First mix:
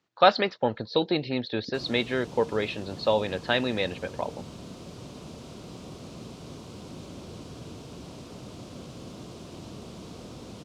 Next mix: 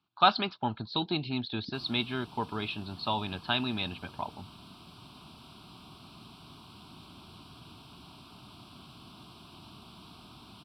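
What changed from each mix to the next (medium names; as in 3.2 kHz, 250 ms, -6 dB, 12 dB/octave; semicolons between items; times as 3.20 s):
background: add bass shelf 430 Hz -10 dB; master: add static phaser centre 1.9 kHz, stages 6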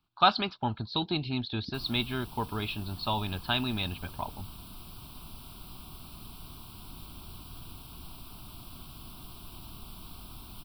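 master: remove band-pass 130–5700 Hz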